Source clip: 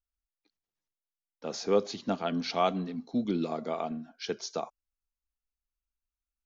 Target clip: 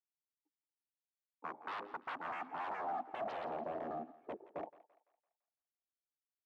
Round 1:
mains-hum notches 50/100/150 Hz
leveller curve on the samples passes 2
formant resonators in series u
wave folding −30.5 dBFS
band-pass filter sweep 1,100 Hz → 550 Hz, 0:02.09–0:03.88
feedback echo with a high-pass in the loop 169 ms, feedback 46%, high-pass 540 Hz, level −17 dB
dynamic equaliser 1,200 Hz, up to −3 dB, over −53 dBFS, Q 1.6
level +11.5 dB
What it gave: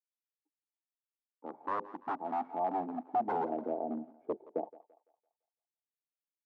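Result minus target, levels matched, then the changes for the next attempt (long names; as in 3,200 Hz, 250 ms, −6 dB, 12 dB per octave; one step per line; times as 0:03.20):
wave folding: distortion −21 dB
change: wave folding −40.5 dBFS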